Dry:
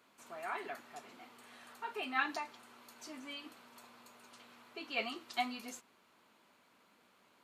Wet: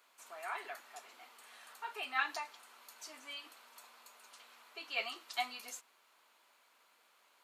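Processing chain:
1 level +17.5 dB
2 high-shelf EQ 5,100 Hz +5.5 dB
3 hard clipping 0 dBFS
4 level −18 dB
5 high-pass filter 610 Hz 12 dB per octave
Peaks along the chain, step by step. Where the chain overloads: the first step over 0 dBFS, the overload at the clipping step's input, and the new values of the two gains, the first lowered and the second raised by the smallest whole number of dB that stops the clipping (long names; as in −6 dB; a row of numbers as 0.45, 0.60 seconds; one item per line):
−2.5, −2.0, −2.0, −20.0, −20.0 dBFS
no step passes full scale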